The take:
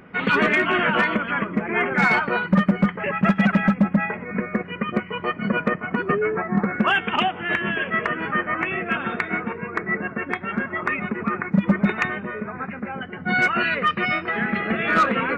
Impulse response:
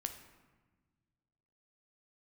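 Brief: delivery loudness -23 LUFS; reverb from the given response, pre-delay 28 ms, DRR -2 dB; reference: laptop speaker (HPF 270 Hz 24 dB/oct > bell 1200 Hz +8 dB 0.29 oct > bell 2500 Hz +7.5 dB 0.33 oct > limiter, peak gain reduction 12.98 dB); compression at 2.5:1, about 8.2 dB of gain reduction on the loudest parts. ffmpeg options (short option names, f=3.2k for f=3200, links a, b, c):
-filter_complex "[0:a]acompressor=threshold=-26dB:ratio=2.5,asplit=2[a][b];[1:a]atrim=start_sample=2205,adelay=28[c];[b][c]afir=irnorm=-1:irlink=0,volume=3dB[d];[a][d]amix=inputs=2:normalize=0,highpass=f=270:w=0.5412,highpass=f=270:w=1.3066,equalizer=f=1.2k:t=o:w=0.29:g=8,equalizer=f=2.5k:t=o:w=0.33:g=7.5,volume=3dB,alimiter=limit=-15dB:level=0:latency=1"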